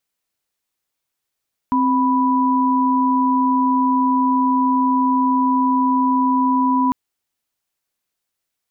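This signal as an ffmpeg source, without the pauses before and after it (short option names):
-f lavfi -i "aevalsrc='0.15*(sin(2*PI*261.63*t)+sin(2*PI*987.77*t))':d=5.2:s=44100"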